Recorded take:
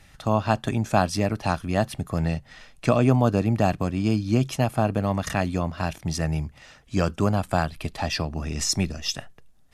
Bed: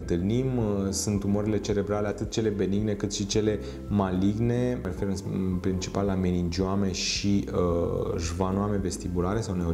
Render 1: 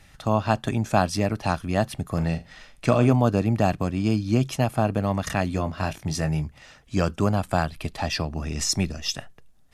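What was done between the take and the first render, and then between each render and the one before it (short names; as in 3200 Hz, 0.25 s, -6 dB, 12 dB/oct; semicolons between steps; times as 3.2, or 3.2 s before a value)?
2.05–3.13 flutter echo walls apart 7.1 m, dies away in 0.23 s; 5.49–6.44 doubler 20 ms -8.5 dB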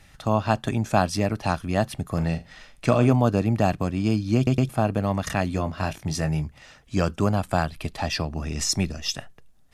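4.36 stutter in place 0.11 s, 3 plays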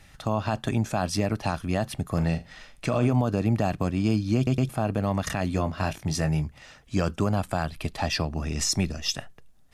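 limiter -13.5 dBFS, peak gain reduction 9 dB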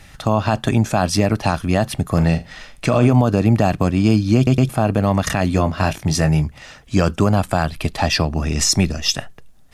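gain +9 dB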